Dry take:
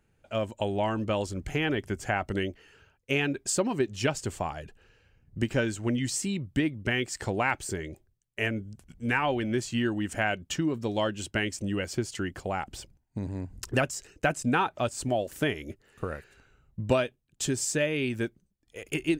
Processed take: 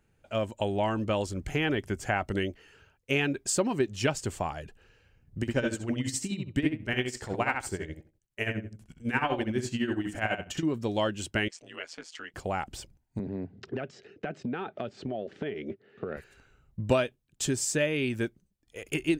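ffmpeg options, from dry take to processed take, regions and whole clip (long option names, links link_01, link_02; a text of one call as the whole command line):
ffmpeg -i in.wav -filter_complex "[0:a]asettb=1/sr,asplit=3[link_01][link_02][link_03];[link_01]atrim=end=5.414[link_04];[link_02]atrim=start=5.41:end=10.63,asetpts=PTS-STARTPTS,afade=type=in:duration=0.004:curve=qsin,afade=type=out:start_time=5.216:duration=0.004:curve=qsin,asplit=2[link_05][link_06];[link_06]adelay=64,lowpass=frequency=3700:poles=1,volume=-4dB,asplit=2[link_07][link_08];[link_08]adelay=64,lowpass=frequency=3700:poles=1,volume=0.28,asplit=2[link_09][link_10];[link_10]adelay=64,lowpass=frequency=3700:poles=1,volume=0.28,asplit=2[link_11][link_12];[link_12]adelay=64,lowpass=frequency=3700:poles=1,volume=0.28[link_13];[link_05][link_07][link_09][link_11][link_13]amix=inputs=5:normalize=0,atrim=end_sample=230202,tremolo=f=12:d=0.74[link_14];[link_03]atrim=start=10.626[link_15];[link_04][link_14]acrossfade=duration=0.004:curve1=hsin:curve2=qsin[link_16];[link_16][link_15]acrossfade=duration=0.004:curve1=qsin:curve2=hsin,asettb=1/sr,asplit=3[link_17][link_18][link_19];[link_17]atrim=end=11.484[link_20];[link_18]atrim=start=11.48:end=12.34,asetpts=PTS-STARTPTS,afade=type=in:duration=0.004:curve=qsin,afade=type=out:start_time=0.856:duration=0.004:curve=qsin,highpass=730,lowpass=5100,aeval=exprs='val(0)*sin(2*PI*82*n/s)':channel_layout=same[link_21];[link_19]atrim=start=12.336[link_22];[link_20][link_21]acrossfade=duration=0.004:curve1=hsin:curve2=qsin[link_23];[link_23][link_22]acrossfade=duration=0.004:curve1=qsin:curve2=hsin,asettb=1/sr,asplit=3[link_24][link_25][link_26];[link_24]atrim=end=13.194[link_27];[link_25]atrim=start=13.19:end=16.17,asetpts=PTS-STARTPTS,afade=type=in:duration=0.004:curve=qsin,afade=type=out:start_time=2.976:duration=0.004:curve=qsin,highpass=frequency=110:width=0.5412,highpass=frequency=110:width=1.3066,equalizer=frequency=210:width_type=q:width=4:gain=7,equalizer=frequency=410:width_type=q:width=4:gain=10,equalizer=frequency=700:width_type=q:width=4:gain=3,equalizer=frequency=1000:width_type=q:width=4:gain=-9,equalizer=frequency=2700:width_type=q:width=4:gain=-3,lowpass=frequency=3700:width=0.5412,lowpass=frequency=3700:width=1.3066,acompressor=threshold=-29dB:ratio=12:attack=3.2:release=140:knee=1:detection=peak[link_28];[link_26]atrim=start=16.166[link_29];[link_27][link_28]acrossfade=duration=0.004:curve1=hsin:curve2=qsin[link_30];[link_30][link_29]acrossfade=duration=0.004:curve1=qsin:curve2=hsin" out.wav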